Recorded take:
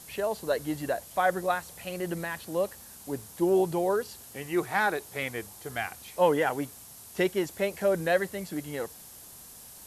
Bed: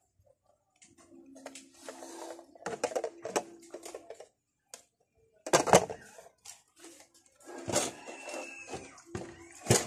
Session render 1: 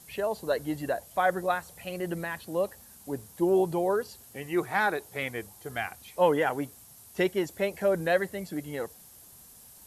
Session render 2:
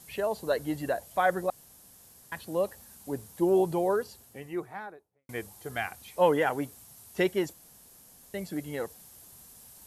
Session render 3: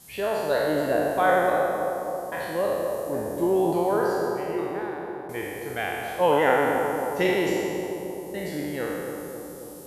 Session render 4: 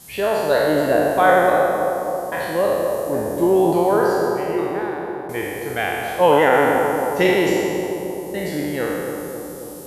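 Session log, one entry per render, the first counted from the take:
denoiser 6 dB, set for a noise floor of -48 dBFS
1.5–2.32 room tone; 3.84–5.29 studio fade out; 7.53–8.34 room tone
spectral trails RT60 2.00 s; analogue delay 0.268 s, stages 2048, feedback 69%, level -7 dB
gain +6.5 dB; limiter -3 dBFS, peak gain reduction 3 dB

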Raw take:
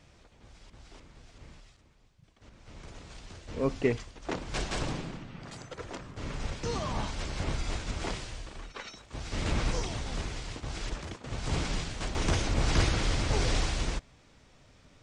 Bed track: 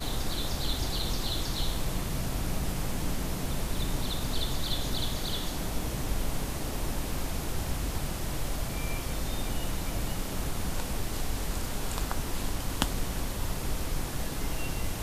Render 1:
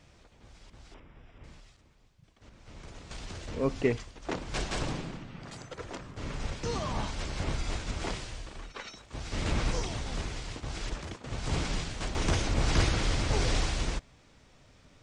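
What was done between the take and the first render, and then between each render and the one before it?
0.94–1.44 polynomial smoothing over 25 samples; 3.11–3.84 upward compressor, threshold -32 dBFS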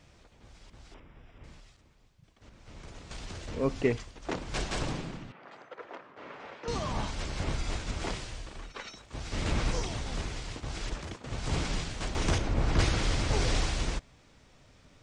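5.32–6.68 BPF 460–2100 Hz; 12.38–12.79 high shelf 2700 Hz -11.5 dB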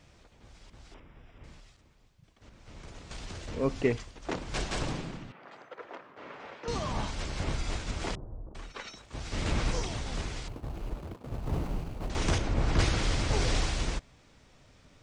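8.15–8.55 Gaussian blur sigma 11 samples; 10.48–12.1 median filter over 25 samples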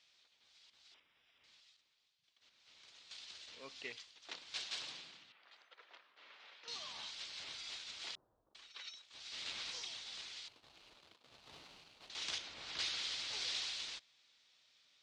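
band-pass 3900 Hz, Q 2.2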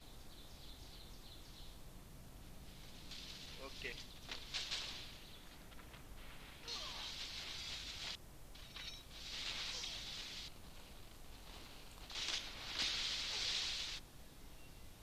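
add bed track -25 dB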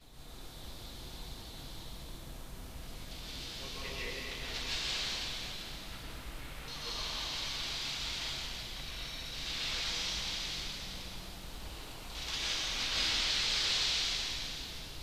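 plate-style reverb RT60 3.4 s, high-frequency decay 0.95×, pre-delay 0.11 s, DRR -9.5 dB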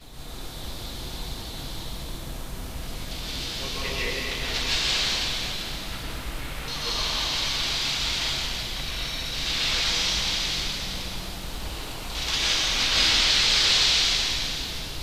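gain +11.5 dB

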